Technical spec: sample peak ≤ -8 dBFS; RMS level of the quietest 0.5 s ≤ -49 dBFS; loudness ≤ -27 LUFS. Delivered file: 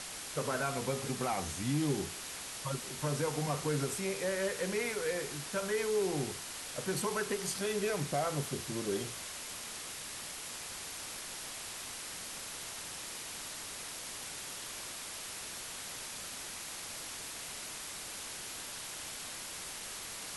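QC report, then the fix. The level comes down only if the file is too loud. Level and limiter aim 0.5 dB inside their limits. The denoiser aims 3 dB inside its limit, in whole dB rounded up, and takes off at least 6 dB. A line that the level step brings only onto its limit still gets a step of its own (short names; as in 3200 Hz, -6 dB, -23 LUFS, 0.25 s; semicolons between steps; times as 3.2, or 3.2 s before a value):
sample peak -21.0 dBFS: OK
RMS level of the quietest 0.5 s -44 dBFS: fail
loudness -37.0 LUFS: OK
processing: denoiser 8 dB, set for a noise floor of -44 dBFS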